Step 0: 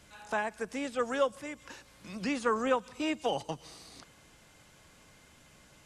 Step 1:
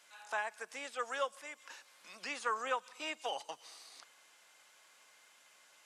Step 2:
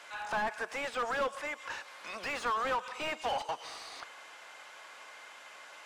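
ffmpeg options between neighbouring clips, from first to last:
ffmpeg -i in.wav -af "highpass=790,volume=-2.5dB" out.wav
ffmpeg -i in.wav -filter_complex "[0:a]asplit=2[link_01][link_02];[link_02]highpass=frequency=720:poles=1,volume=27dB,asoftclip=type=tanh:threshold=-22dB[link_03];[link_01][link_03]amix=inputs=2:normalize=0,lowpass=frequency=1100:poles=1,volume=-6dB" out.wav

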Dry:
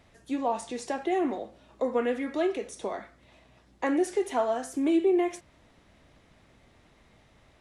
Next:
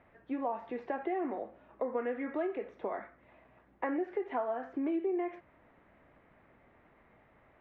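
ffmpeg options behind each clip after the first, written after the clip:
ffmpeg -i in.wav -af "lowpass=frequency=2100:width=0.5412,lowpass=frequency=2100:width=1.3066,lowshelf=frequency=190:gain=-10,acompressor=threshold=-32dB:ratio=3" out.wav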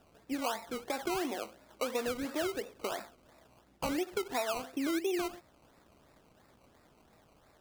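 ffmpeg -i in.wav -af "acrusher=samples=20:mix=1:aa=0.000001:lfo=1:lforange=12:lforate=2.9" out.wav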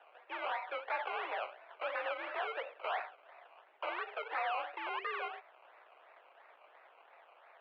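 ffmpeg -i in.wav -af "aeval=exprs='0.0668*sin(PI/2*2.82*val(0)/0.0668)':channel_layout=same,highpass=frequency=510:width_type=q:width=0.5412,highpass=frequency=510:width_type=q:width=1.307,lowpass=frequency=2700:width_type=q:width=0.5176,lowpass=frequency=2700:width_type=q:width=0.7071,lowpass=frequency=2700:width_type=q:width=1.932,afreqshift=57,crystalizer=i=2.5:c=0,volume=-7.5dB" out.wav

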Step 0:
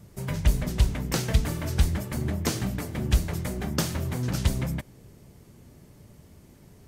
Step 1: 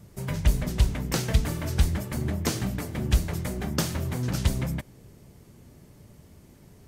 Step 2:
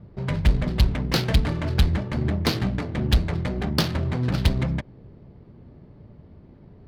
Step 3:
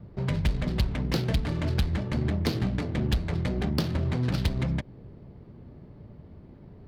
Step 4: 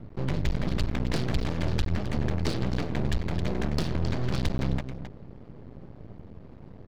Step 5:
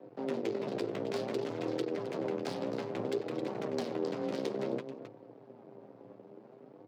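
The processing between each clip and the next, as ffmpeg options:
ffmpeg -i in.wav -af anull out.wav
ffmpeg -i in.wav -af "highshelf=frequency=6400:width_type=q:width=3:gain=-14,adynamicsmooth=sensitivity=5:basefreq=1200,asoftclip=type=hard:threshold=-15.5dB,volume=4.5dB" out.wav
ffmpeg -i in.wav -filter_complex "[0:a]acrossover=split=610|2400[link_01][link_02][link_03];[link_01]acompressor=threshold=-23dB:ratio=4[link_04];[link_02]acompressor=threshold=-41dB:ratio=4[link_05];[link_03]acompressor=threshold=-36dB:ratio=4[link_06];[link_04][link_05][link_06]amix=inputs=3:normalize=0" out.wav
ffmpeg -i in.wav -af "aresample=16000,asoftclip=type=tanh:threshold=-22.5dB,aresample=44100,aecho=1:1:265:0.299,aeval=exprs='max(val(0),0)':channel_layout=same,volume=5.5dB" out.wav
ffmpeg -i in.wav -af "aeval=exprs='val(0)*sin(2*PI*290*n/s)':channel_layout=same,flanger=delay=4.8:depth=7.5:regen=42:speed=0.58:shape=sinusoidal,afreqshift=110,volume=-2dB" out.wav

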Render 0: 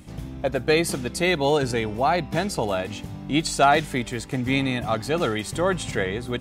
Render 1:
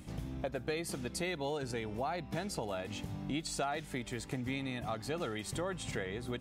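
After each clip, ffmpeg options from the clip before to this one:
ffmpeg -i in.wav -af "acompressor=threshold=-31dB:ratio=4,volume=-4.5dB" out.wav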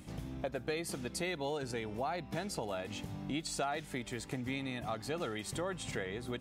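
ffmpeg -i in.wav -af "lowshelf=frequency=120:gain=-4" out.wav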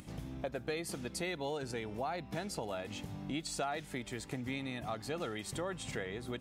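ffmpeg -i in.wav -af "acompressor=mode=upward:threshold=-50dB:ratio=2.5,volume=-1dB" out.wav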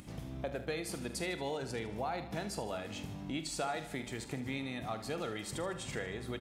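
ffmpeg -i in.wav -filter_complex "[0:a]asplit=2[link_01][link_02];[link_02]adelay=44,volume=-12dB[link_03];[link_01][link_03]amix=inputs=2:normalize=0,aecho=1:1:76|152|228|304|380|456:0.224|0.123|0.0677|0.0372|0.0205|0.0113" out.wav

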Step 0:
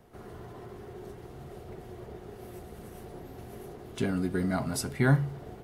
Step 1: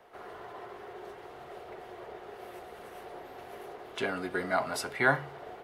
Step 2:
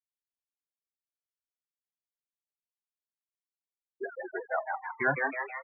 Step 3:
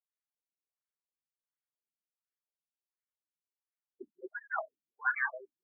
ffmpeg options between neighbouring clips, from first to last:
ffmpeg -i in.wav -filter_complex "[0:a]acrossover=split=460 3900:gain=0.0794 1 0.251[link_01][link_02][link_03];[link_01][link_02][link_03]amix=inputs=3:normalize=0,volume=6.5dB" out.wav
ffmpeg -i in.wav -filter_complex "[0:a]afftfilt=real='re*gte(hypot(re,im),0.126)':imag='im*gte(hypot(re,im),0.126)':win_size=1024:overlap=0.75,asplit=9[link_01][link_02][link_03][link_04][link_05][link_06][link_07][link_08][link_09];[link_02]adelay=160,afreqshift=130,volume=-3.5dB[link_10];[link_03]adelay=320,afreqshift=260,volume=-8.5dB[link_11];[link_04]adelay=480,afreqshift=390,volume=-13.6dB[link_12];[link_05]adelay=640,afreqshift=520,volume=-18.6dB[link_13];[link_06]adelay=800,afreqshift=650,volume=-23.6dB[link_14];[link_07]adelay=960,afreqshift=780,volume=-28.7dB[link_15];[link_08]adelay=1120,afreqshift=910,volume=-33.7dB[link_16];[link_09]adelay=1280,afreqshift=1040,volume=-38.8dB[link_17];[link_01][link_10][link_11][link_12][link_13][link_14][link_15][link_16][link_17]amix=inputs=9:normalize=0,volume=-2dB" out.wav
ffmpeg -i in.wav -af "afftfilt=real='re*between(b*sr/1024,210*pow(1700/210,0.5+0.5*sin(2*PI*1.4*pts/sr))/1.41,210*pow(1700/210,0.5+0.5*sin(2*PI*1.4*pts/sr))*1.41)':imag='im*between(b*sr/1024,210*pow(1700/210,0.5+0.5*sin(2*PI*1.4*pts/sr))/1.41,210*pow(1700/210,0.5+0.5*sin(2*PI*1.4*pts/sr))*1.41)':win_size=1024:overlap=0.75" out.wav

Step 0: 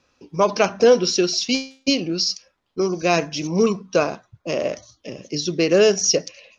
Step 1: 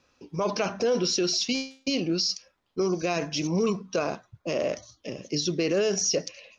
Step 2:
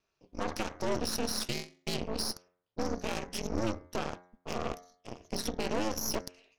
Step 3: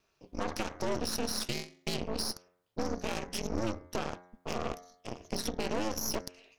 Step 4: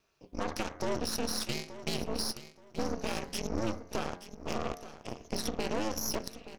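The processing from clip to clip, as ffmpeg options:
ffmpeg -i in.wav -af "alimiter=limit=-15dB:level=0:latency=1:release=27,volume=-2dB" out.wav
ffmpeg -i in.wav -af "aeval=exprs='val(0)*sin(2*PI*110*n/s)':channel_layout=same,aeval=exprs='0.15*(cos(1*acos(clip(val(0)/0.15,-1,1)))-cos(1*PI/2))+0.0531*(cos(2*acos(clip(val(0)/0.15,-1,1)))-cos(2*PI/2))+0.00596*(cos(3*acos(clip(val(0)/0.15,-1,1)))-cos(3*PI/2))+0.0237*(cos(6*acos(clip(val(0)/0.15,-1,1)))-cos(6*PI/2))+0.00841*(cos(7*acos(clip(val(0)/0.15,-1,1)))-cos(7*PI/2))':channel_layout=same,bandreject=frequency=89.39:width_type=h:width=4,bandreject=frequency=178.78:width_type=h:width=4,bandreject=frequency=268.17:width_type=h:width=4,bandreject=frequency=357.56:width_type=h:width=4,bandreject=frequency=446.95:width_type=h:width=4,bandreject=frequency=536.34:width_type=h:width=4,bandreject=frequency=625.73:width_type=h:width=4,bandreject=frequency=715.12:width_type=h:width=4,bandreject=frequency=804.51:width_type=h:width=4,bandreject=frequency=893.9:width_type=h:width=4,bandreject=frequency=983.29:width_type=h:width=4,bandreject=frequency=1072.68:width_type=h:width=4,bandreject=frequency=1162.07:width_type=h:width=4,bandreject=frequency=1251.46:width_type=h:width=4,bandreject=frequency=1340.85:width_type=h:width=4,bandreject=frequency=1430.24:width_type=h:width=4,bandreject=frequency=1519.63:width_type=h:width=4,bandreject=frequency=1609.02:width_type=h:width=4,bandreject=frequency=1698.41:width_type=h:width=4,bandreject=frequency=1787.8:width_type=h:width=4,bandreject=frequency=1877.19:width_type=h:width=4,bandreject=frequency=1966.58:width_type=h:width=4,bandreject=frequency=2055.97:width_type=h:width=4,bandreject=frequency=2145.36:width_type=h:width=4,bandreject=frequency=2234.75:width_type=h:width=4,volume=-5.5dB" out.wav
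ffmpeg -i in.wav -af "acompressor=threshold=-47dB:ratio=1.5,volume=6.5dB" out.wav
ffmpeg -i in.wav -af "aecho=1:1:877|1754|2631:0.2|0.0519|0.0135" out.wav

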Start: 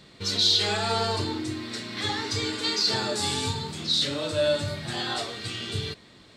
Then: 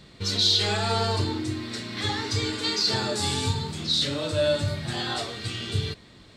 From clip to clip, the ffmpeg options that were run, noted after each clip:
ffmpeg -i in.wav -af "lowshelf=frequency=110:gain=10" out.wav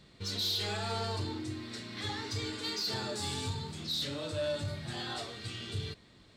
ffmpeg -i in.wav -af "asoftclip=type=tanh:threshold=-18.5dB,volume=-8.5dB" out.wav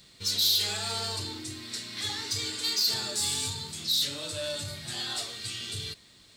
ffmpeg -i in.wav -af "crystalizer=i=6:c=0,volume=-3.5dB" out.wav

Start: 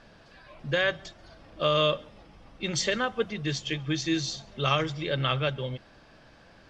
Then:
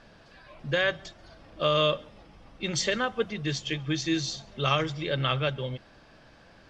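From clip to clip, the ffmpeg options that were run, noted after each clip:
ffmpeg -i in.wav -af anull out.wav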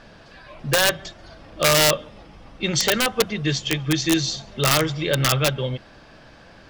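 ffmpeg -i in.wav -af "aeval=exprs='(mod(7.08*val(0)+1,2)-1)/7.08':channel_layout=same,volume=7.5dB" out.wav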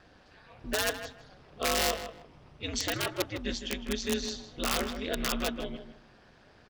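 ffmpeg -i in.wav -filter_complex "[0:a]aeval=exprs='val(0)*sin(2*PI*100*n/s)':channel_layout=same,asplit=2[link_01][link_02];[link_02]adelay=157,lowpass=frequency=2900:poles=1,volume=-9.5dB,asplit=2[link_03][link_04];[link_04]adelay=157,lowpass=frequency=2900:poles=1,volume=0.23,asplit=2[link_05][link_06];[link_06]adelay=157,lowpass=frequency=2900:poles=1,volume=0.23[link_07];[link_01][link_03][link_05][link_07]amix=inputs=4:normalize=0,volume=-8.5dB" out.wav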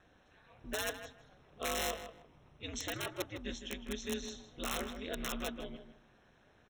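ffmpeg -i in.wav -af "asuperstop=centerf=4700:order=8:qfactor=4.4,volume=-7.5dB" out.wav

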